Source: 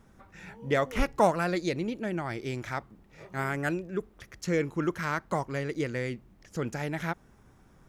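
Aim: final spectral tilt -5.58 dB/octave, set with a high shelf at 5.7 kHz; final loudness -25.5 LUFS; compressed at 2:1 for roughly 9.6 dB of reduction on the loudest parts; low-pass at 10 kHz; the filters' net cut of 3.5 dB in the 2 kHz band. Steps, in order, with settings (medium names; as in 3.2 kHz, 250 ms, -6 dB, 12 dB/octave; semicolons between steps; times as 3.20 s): low-pass 10 kHz; peaking EQ 2 kHz -5 dB; treble shelf 5.7 kHz +5 dB; compression 2:1, threshold -36 dBFS; trim +12.5 dB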